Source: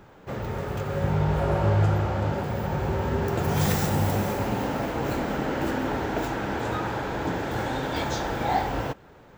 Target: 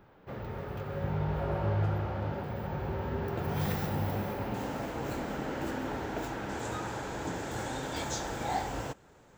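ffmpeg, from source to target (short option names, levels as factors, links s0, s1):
-af "asetnsamples=n=441:p=0,asendcmd='4.54 equalizer g 3.5;6.49 equalizer g 13',equalizer=f=7600:w=1.3:g=-12,volume=0.398"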